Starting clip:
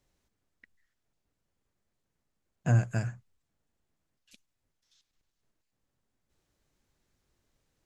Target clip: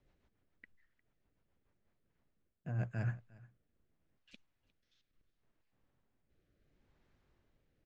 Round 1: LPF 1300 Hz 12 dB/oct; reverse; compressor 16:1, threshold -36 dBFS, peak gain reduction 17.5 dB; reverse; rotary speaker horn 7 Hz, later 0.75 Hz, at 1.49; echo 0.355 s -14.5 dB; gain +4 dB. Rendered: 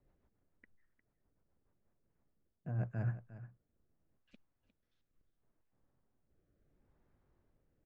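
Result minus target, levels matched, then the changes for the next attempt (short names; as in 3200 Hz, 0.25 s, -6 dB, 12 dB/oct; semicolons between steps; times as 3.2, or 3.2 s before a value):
2000 Hz band -5.5 dB; echo-to-direct +8 dB
change: LPF 2800 Hz 12 dB/oct; change: echo 0.355 s -22.5 dB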